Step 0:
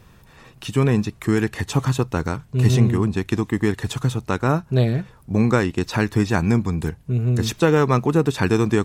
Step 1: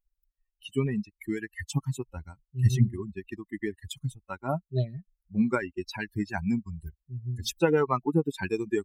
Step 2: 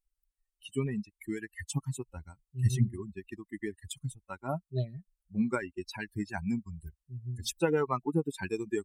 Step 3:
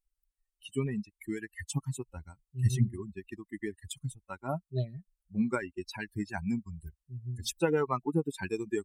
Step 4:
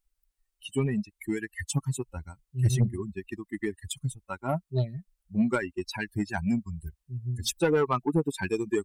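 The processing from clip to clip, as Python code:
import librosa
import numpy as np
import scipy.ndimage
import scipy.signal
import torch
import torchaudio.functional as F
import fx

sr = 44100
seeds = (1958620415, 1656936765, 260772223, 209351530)

y1 = fx.bin_expand(x, sr, power=3.0)
y1 = F.gain(torch.from_numpy(y1), -1.5).numpy()
y2 = fx.peak_eq(y1, sr, hz=8900.0, db=9.5, octaves=0.53)
y2 = F.gain(torch.from_numpy(y2), -4.5).numpy()
y3 = y2
y4 = 10.0 ** (-22.0 / 20.0) * np.tanh(y3 / 10.0 ** (-22.0 / 20.0))
y4 = F.gain(torch.from_numpy(y4), 6.0).numpy()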